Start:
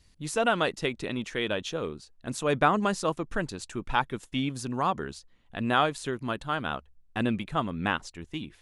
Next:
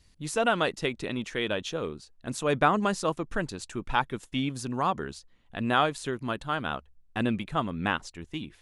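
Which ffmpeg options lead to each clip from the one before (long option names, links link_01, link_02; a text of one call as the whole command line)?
ffmpeg -i in.wav -af anull out.wav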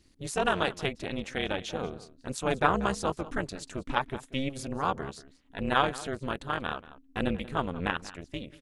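ffmpeg -i in.wav -filter_complex "[0:a]asplit=2[link_01][link_02];[link_02]adelay=186.6,volume=-17dB,highshelf=frequency=4000:gain=-4.2[link_03];[link_01][link_03]amix=inputs=2:normalize=0,tremolo=f=270:d=0.947,volume=2dB" out.wav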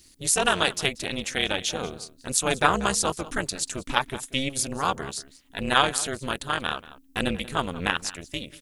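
ffmpeg -i in.wav -af "crystalizer=i=5:c=0,volume=1.5dB" out.wav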